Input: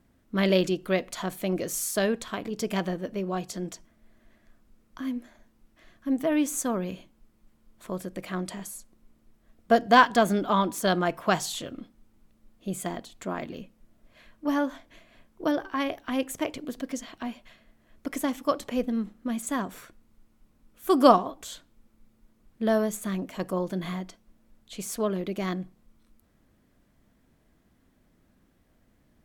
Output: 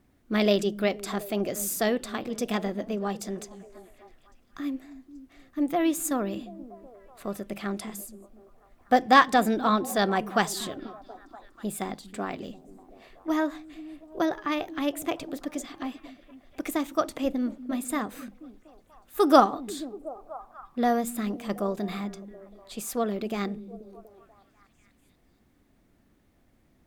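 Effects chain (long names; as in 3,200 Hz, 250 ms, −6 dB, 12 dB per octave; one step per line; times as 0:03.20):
wrong playback speed 44.1 kHz file played as 48 kHz
echo through a band-pass that steps 242 ms, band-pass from 190 Hz, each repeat 0.7 octaves, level −11.5 dB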